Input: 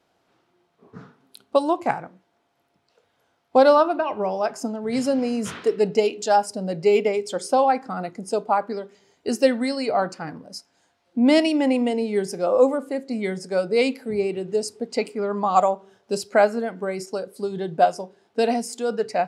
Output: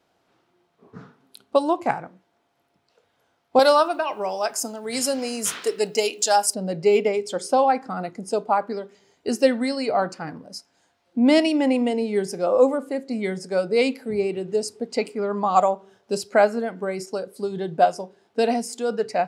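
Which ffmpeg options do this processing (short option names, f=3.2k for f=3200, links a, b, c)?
-filter_complex "[0:a]asettb=1/sr,asplit=3[a][b][c];[a]atrim=end=3.594[d];[b]atrim=start=3.59:end=6.54,asetpts=PTS-STARTPTS,afade=t=in:d=0.004:c=qsin,afade=t=out:st=2.946:d=0.004:c=qsin,aemphasis=mode=production:type=riaa[e];[c]atrim=start=6.536[f];[d][e]acrossfade=d=0.004:c1=hsin:c2=qsin[g];[g][f]acrossfade=d=0.004:c1=qsin:c2=hsin"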